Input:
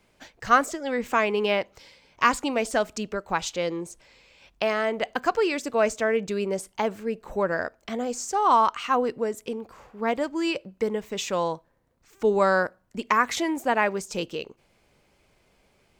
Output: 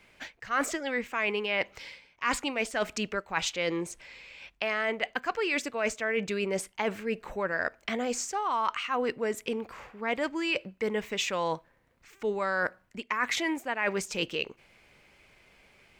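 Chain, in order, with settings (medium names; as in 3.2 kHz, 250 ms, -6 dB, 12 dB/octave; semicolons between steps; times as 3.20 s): peaking EQ 2.2 kHz +10 dB 1.4 oct; reverse; compression 8:1, threshold -26 dBFS, peak gain reduction 17.5 dB; reverse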